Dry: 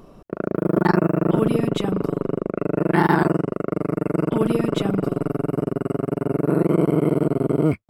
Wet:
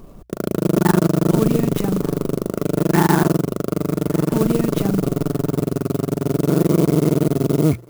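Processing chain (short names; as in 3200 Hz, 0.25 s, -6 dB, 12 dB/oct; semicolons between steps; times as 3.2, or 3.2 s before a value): low shelf 140 Hz +10.5 dB; notches 60/120 Hz; on a send: thinning echo 1.178 s, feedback 34%, high-pass 540 Hz, level -22.5 dB; on the sum: clock jitter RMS 0.052 ms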